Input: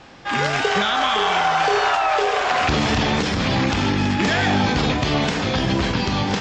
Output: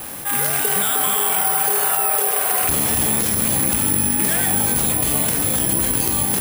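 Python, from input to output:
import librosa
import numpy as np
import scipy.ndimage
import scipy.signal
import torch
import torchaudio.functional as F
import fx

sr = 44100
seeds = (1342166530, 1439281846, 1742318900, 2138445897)

p1 = x + fx.echo_bbd(x, sr, ms=307, stages=1024, feedback_pct=55, wet_db=-6.0, dry=0)
p2 = (np.kron(p1[::4], np.eye(4)[0]) * 4)[:len(p1)]
p3 = fx.env_flatten(p2, sr, amount_pct=50)
y = p3 * 10.0 ** (-7.0 / 20.0)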